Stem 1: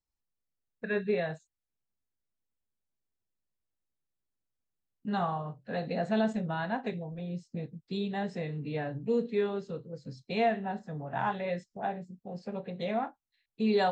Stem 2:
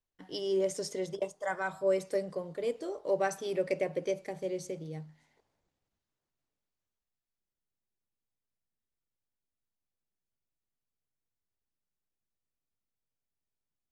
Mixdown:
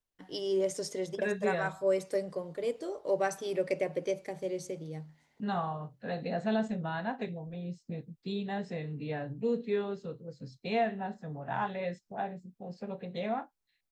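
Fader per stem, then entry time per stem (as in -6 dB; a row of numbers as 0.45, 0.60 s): -2.0, 0.0 dB; 0.35, 0.00 s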